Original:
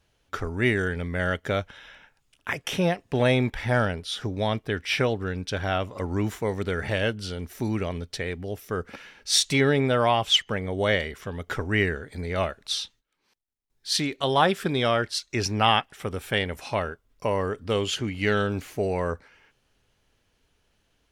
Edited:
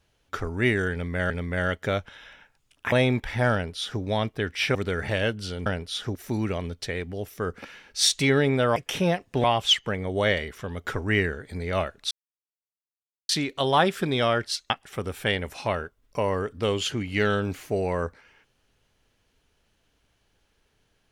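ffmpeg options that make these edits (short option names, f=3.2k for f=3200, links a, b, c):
-filter_complex "[0:a]asplit=11[a][b][c][d][e][f][g][h][i][j][k];[a]atrim=end=1.302[l];[b]atrim=start=0.918:end=2.542[m];[c]atrim=start=3.218:end=5.052[n];[d]atrim=start=6.548:end=7.462[o];[e]atrim=start=3.828:end=4.322[p];[f]atrim=start=7.458:end=10.072[q];[g]atrim=start=2.538:end=3.222[r];[h]atrim=start=10.068:end=12.74,asetpts=PTS-STARTPTS,afade=t=out:st=2.668:d=0.004:c=hsin[s];[i]atrim=start=12.74:end=13.92,asetpts=PTS-STARTPTS,volume=0[t];[j]atrim=start=13.92:end=15.332,asetpts=PTS-STARTPTS,afade=t=in:d=0.004:c=hsin[u];[k]atrim=start=15.768[v];[l][m]acrossfade=d=0.004:c1=hsin:c2=hsin[w];[w][n]acrossfade=d=0.004:c1=hsin:c2=hsin[x];[x][o]acrossfade=d=0.004:c1=hsin:c2=hsin[y];[y][p]acrossfade=d=0.004:c1=hsin:c2=hsin[z];[z][q]acrossfade=d=0.004:c1=hsin:c2=hsin[aa];[aa][r]acrossfade=d=0.004:c1=hsin:c2=hsin[ab];[s][t][u]concat=n=3:v=0:a=1[ac];[ab][ac]acrossfade=d=0.004:c1=hsin:c2=hsin[ad];[ad][v]acrossfade=d=0.004:c1=hsin:c2=hsin"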